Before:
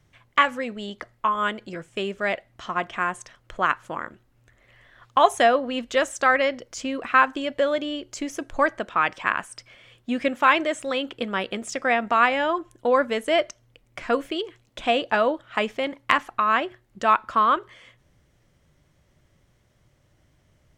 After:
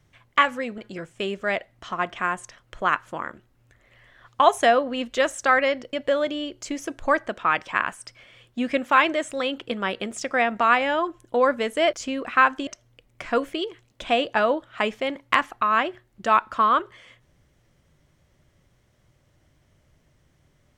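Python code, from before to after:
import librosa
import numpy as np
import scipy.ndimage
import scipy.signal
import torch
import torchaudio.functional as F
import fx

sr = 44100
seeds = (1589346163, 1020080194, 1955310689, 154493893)

y = fx.edit(x, sr, fx.cut(start_s=0.78, length_s=0.77),
    fx.move(start_s=6.7, length_s=0.74, to_s=13.44), tone=tone)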